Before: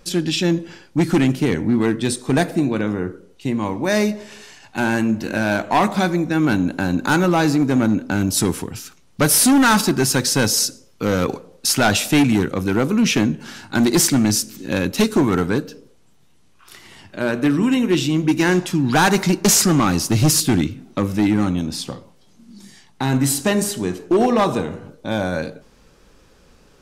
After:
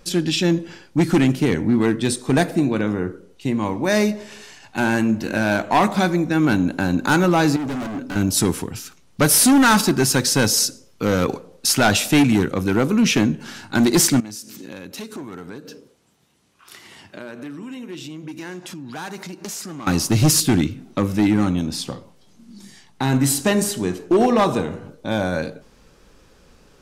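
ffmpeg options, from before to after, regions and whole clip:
ffmpeg -i in.wav -filter_complex "[0:a]asettb=1/sr,asplit=3[link_01][link_02][link_03];[link_01]atrim=end=7.564[link_04];[link_02]atrim=start=7.56:end=8.16,asetpts=PTS-STARTPTS,afade=type=in:duration=0.004:curve=qsin,afade=type=out:start_time=0.596:duration=0.004:curve=qsin,volume=25.5dB,asoftclip=hard,volume=-25.5dB,aecho=1:1:7.1:0.34,atrim=end_sample=26460[link_05];[link_03]atrim=start=8.156[link_06];[link_04][link_05]acrossfade=duration=0.004:curve1=hsin:curve2=qsin[link_07];[link_07][link_06]acrossfade=duration=0.004:curve1=qsin:curve2=hsin,asettb=1/sr,asplit=3[link_08][link_09][link_10];[link_08]atrim=end=14.204[link_11];[link_09]atrim=start=14.2:end=19.87,asetpts=PTS-STARTPTS,afade=type=in:duration=0.004:curve=qsin,afade=type=out:start_time=5.666:duration=0.004:curve=qsin,acompressor=threshold=-31dB:ratio=6:attack=3.2:release=140:knee=1:detection=peak,highpass=frequency=150:poles=1[link_12];[link_10]atrim=start=19.866[link_13];[link_11][link_12]acrossfade=duration=0.004:curve1=hsin:curve2=qsin[link_14];[link_14][link_13]acrossfade=duration=0.004:curve1=qsin:curve2=hsin" out.wav

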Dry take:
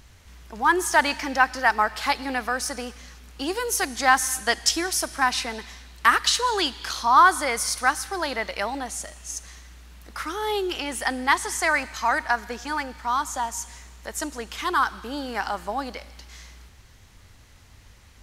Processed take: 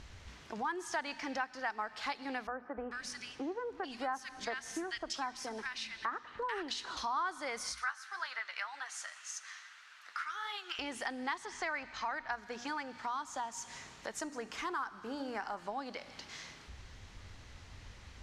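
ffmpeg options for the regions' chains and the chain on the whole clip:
ffmpeg -i in.wav -filter_complex "[0:a]asettb=1/sr,asplit=3[link_01][link_02][link_03];[link_01]atrim=end=2.474[link_04];[link_02]atrim=start=2.47:end=6.97,asetpts=PTS-STARTPTS,afade=type=in:duration=0.004:curve=qsin,afade=type=out:start_time=4.496:duration=0.004:curve=qsin,highshelf=frequency=3400:gain=-9,acrossover=split=160|1700[link_05][link_06][link_07];[link_05]adelay=300[link_08];[link_07]adelay=440[link_09];[link_08][link_06][link_09]amix=inputs=3:normalize=0,atrim=end_sample=198450[link_10];[link_03]atrim=start=6.966[link_11];[link_04][link_10]acrossfade=duration=0.004:curve1=hsin:curve2=qsin[link_12];[link_12][link_11]acrossfade=duration=0.004:curve1=qsin:curve2=hsin,asettb=1/sr,asplit=3[link_13][link_14][link_15];[link_13]atrim=end=7.724[link_16];[link_14]atrim=start=7.72:end=10.79,asetpts=PTS-STARTPTS,afade=type=in:duration=0.004:curve=qsin,afade=type=out:start_time=3.066:duration=0.004:curve=qsin,highpass=frequency=1400:width_type=q:width=2.4,flanger=delay=5.9:depth=7.5:regen=43:speed=1.8:shape=triangular[link_17];[link_15]atrim=start=10.786[link_18];[link_16][link_17]acrossfade=duration=0.004:curve1=hsin:curve2=qsin[link_19];[link_19][link_18]acrossfade=duration=0.004:curve1=qsin:curve2=hsin,asettb=1/sr,asplit=3[link_20][link_21][link_22];[link_20]atrim=end=11.454[link_23];[link_21]atrim=start=11.45:end=12.32,asetpts=PTS-STARTPTS,afade=type=in:duration=0.004:curve=qsin,afade=type=out:start_time=0.866:duration=0.004:curve=qsin,lowpass=5000,asubboost=boost=8:cutoff=120[link_24];[link_22]atrim=start=12.316[link_25];[link_23][link_24]acrossfade=duration=0.004:curve1=hsin:curve2=qsin[link_26];[link_26][link_25]acrossfade=duration=0.004:curve1=qsin:curve2=hsin,asettb=1/sr,asplit=3[link_27][link_28][link_29];[link_27]atrim=end=14.204[link_30];[link_28]atrim=start=14.2:end=15.59,asetpts=PTS-STARTPTS,afade=type=in:duration=0.004:curve=qsin,afade=type=out:start_time=1.386:duration=0.004:curve=qsin,equalizer=frequency=3500:width_type=o:width=0.81:gain=-8,bandreject=frequency=145.6:width_type=h:width=4,bandreject=frequency=291.2:width_type=h:width=4,bandreject=frequency=436.8:width_type=h:width=4,bandreject=frequency=582.4:width_type=h:width=4,bandreject=frequency=728:width_type=h:width=4,bandreject=frequency=873.6:width_type=h:width=4,bandreject=frequency=1019.2:width_type=h:width=4,bandreject=frequency=1164.8:width_type=h:width=4,bandreject=frequency=1310.4:width_type=h:width=4,bandreject=frequency=1456:width_type=h:width=4,bandreject=frequency=1601.6:width_type=h:width=4,bandreject=frequency=1747.2:width_type=h:width=4,bandreject=frequency=1892.8:width_type=h:width=4,bandreject=frequency=2038.4:width_type=h:width=4,bandreject=frequency=2184:width_type=h:width=4,bandreject=frequency=2329.6:width_type=h:width=4,bandreject=frequency=2475.2:width_type=h:width=4,bandreject=frequency=2620.8:width_type=h:width=4,bandreject=frequency=2766.4:width_type=h:width=4,bandreject=frequency=2912:width_type=h:width=4,bandreject=frequency=3057.6:width_type=h:width=4,bandreject=frequency=3203.2:width_type=h:width=4,bandreject=frequency=3348.8:width_type=h:width=4,bandreject=frequency=3494.4:width_type=h:width=4,bandreject=frequency=3640:width_type=h:width=4,bandreject=frequency=3785.6:width_type=h:width=4,bandreject=frequency=3931.2:width_type=h:width=4,bandreject=frequency=4076.8:width_type=h:width=4,bandreject=frequency=4222.4:width_type=h:width=4,bandreject=frequency=4368:width_type=h:width=4,bandreject=frequency=4513.6:width_type=h:width=4,acrusher=bits=7:mode=log:mix=0:aa=0.000001[link_31];[link_29]atrim=start=15.586[link_32];[link_30][link_31]acrossfade=duration=0.004:curve1=hsin:curve2=qsin[link_33];[link_33][link_32]acrossfade=duration=0.004:curve1=qsin:curve2=hsin,lowpass=5900,bandreject=frequency=60:width_type=h:width=6,bandreject=frequency=120:width_type=h:width=6,bandreject=frequency=180:width_type=h:width=6,bandreject=frequency=240:width_type=h:width=6,acompressor=threshold=-40dB:ratio=3" out.wav

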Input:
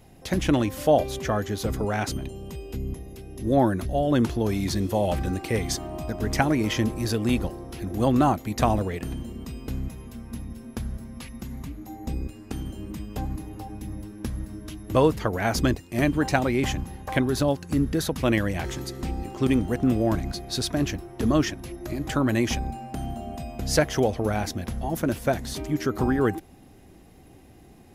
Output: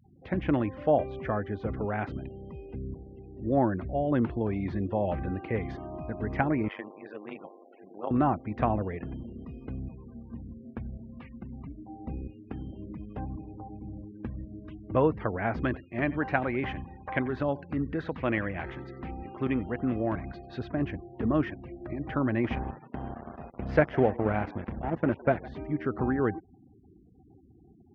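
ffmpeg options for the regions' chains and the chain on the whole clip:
ffmpeg -i in.wav -filter_complex "[0:a]asettb=1/sr,asplit=3[link_01][link_02][link_03];[link_01]atrim=end=6.684[link_04];[link_02]atrim=start=6.68:end=8.11,asetpts=PTS-STARTPTS,afade=type=in:duration=0.004:curve=qsin,afade=type=out:start_time=1.426:duration=0.004:curve=qsin,tremolo=f=100:d=0.947,highpass=470,lowpass=4600[link_05];[link_03]atrim=start=8.106[link_06];[link_04][link_05]acrossfade=duration=0.004:curve1=hsin:curve2=qsin[link_07];[link_07][link_06]acrossfade=duration=0.004:curve1=qsin:curve2=hsin,asettb=1/sr,asplit=3[link_08][link_09][link_10];[link_08]atrim=end=15.624[link_11];[link_09]atrim=start=15.62:end=20.59,asetpts=PTS-STARTPTS,afade=type=in:duration=0.004:curve=qsin,afade=type=out:start_time=4.966:duration=0.004:curve=qsin,tiltshelf=frequency=690:gain=-3.5,aecho=1:1:91|182:0.106|0.018,atrim=end_sample=219177[link_12];[link_10]atrim=start=20.586[link_13];[link_11][link_12]acrossfade=duration=0.004:curve1=hsin:curve2=qsin[link_14];[link_14][link_13]acrossfade=duration=0.004:curve1=qsin:curve2=hsin,asettb=1/sr,asplit=3[link_15][link_16][link_17];[link_15]atrim=end=22.444[link_18];[link_16]atrim=start=22.44:end=25.48,asetpts=PTS-STARTPTS,afade=type=in:duration=0.004:curve=qsin,afade=type=out:start_time=3.036:duration=0.004:curve=qsin,aeval=exprs='sgn(val(0))*max(abs(val(0))-0.0188,0)':channel_layout=same,asplit=5[link_19][link_20][link_21][link_22][link_23];[link_20]adelay=160,afreqshift=90,volume=-22dB[link_24];[link_21]adelay=320,afreqshift=180,volume=-27dB[link_25];[link_22]adelay=480,afreqshift=270,volume=-32.1dB[link_26];[link_23]adelay=640,afreqshift=360,volume=-37.1dB[link_27];[link_19][link_24][link_25][link_26][link_27]amix=inputs=5:normalize=0,atrim=end_sample=134064,acontrast=24[link_28];[link_17]atrim=start=25.476[link_29];[link_18][link_28]acrossfade=duration=0.004:curve1=hsin:curve2=qsin[link_30];[link_30][link_29]acrossfade=duration=0.004:curve1=qsin:curve2=hsin,highpass=61,afftfilt=real='re*gte(hypot(re,im),0.00794)':imag='im*gte(hypot(re,im),0.00794)':win_size=1024:overlap=0.75,lowpass=frequency=2300:width=0.5412,lowpass=frequency=2300:width=1.3066,volume=-4.5dB" out.wav

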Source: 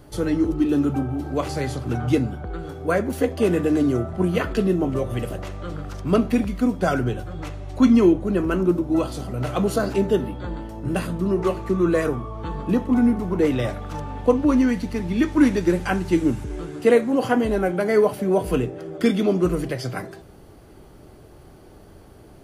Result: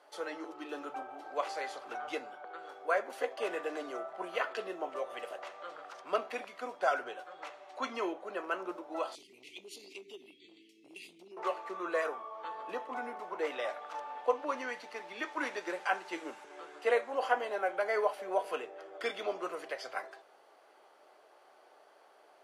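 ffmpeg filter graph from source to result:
ffmpeg -i in.wav -filter_complex "[0:a]asettb=1/sr,asplit=3[link_01][link_02][link_03];[link_01]atrim=end=9.154[link_04];[link_02]atrim=start=9.15:end=11.37,asetpts=PTS-STARTPTS,afade=type=in:duration=0.004:curve=qsin,afade=type=out:start_time=2.216:duration=0.004:curve=qsin,asuperstop=centerf=940:order=20:qfactor=0.54,acompressor=threshold=-25dB:ratio=6:attack=3.2:release=140:knee=1:detection=peak[link_05];[link_03]atrim=start=11.366[link_06];[link_04][link_05]acrossfade=duration=0.004:curve1=hsin:curve2=qsin[link_07];[link_07][link_06]acrossfade=duration=0.004:curve1=qsin:curve2=hsin,highpass=frequency=620:width=0.5412,highpass=frequency=620:width=1.3066,aemphasis=mode=reproduction:type=bsi,volume=-5dB" out.wav

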